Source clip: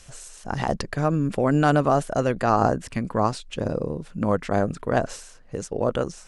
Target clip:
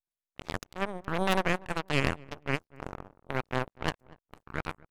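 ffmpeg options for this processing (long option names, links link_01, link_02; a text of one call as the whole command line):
ffmpeg -i in.wav -filter_complex "[0:a]asetrate=56448,aresample=44100,aeval=exprs='abs(val(0))':channel_layout=same,aeval=exprs='0.562*(cos(1*acos(clip(val(0)/0.562,-1,1)))-cos(1*PI/2))+0.126*(cos(3*acos(clip(val(0)/0.562,-1,1)))-cos(3*PI/2))+0.0631*(cos(5*acos(clip(val(0)/0.562,-1,1)))-cos(5*PI/2))+0.0708*(cos(7*acos(clip(val(0)/0.562,-1,1)))-cos(7*PI/2))+0.00794*(cos(8*acos(clip(val(0)/0.562,-1,1)))-cos(8*PI/2))':channel_layout=same,asplit=2[link_01][link_02];[link_02]adelay=242,lowpass=frequency=1100:poles=1,volume=-21dB,asplit=2[link_03][link_04];[link_04]adelay=242,lowpass=frequency=1100:poles=1,volume=0.31[link_05];[link_03][link_05]amix=inputs=2:normalize=0[link_06];[link_01][link_06]amix=inputs=2:normalize=0,volume=-2.5dB" out.wav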